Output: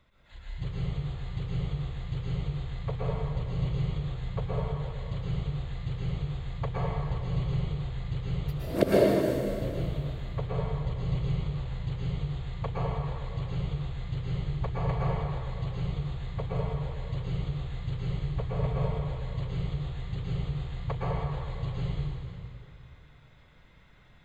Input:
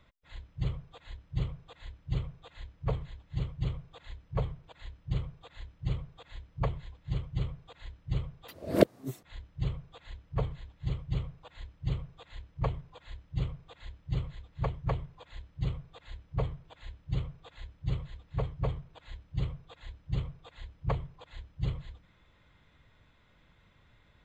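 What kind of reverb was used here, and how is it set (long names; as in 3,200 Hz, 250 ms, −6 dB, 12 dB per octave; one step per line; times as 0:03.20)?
dense smooth reverb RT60 2.6 s, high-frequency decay 0.8×, pre-delay 100 ms, DRR −7.5 dB
level −3 dB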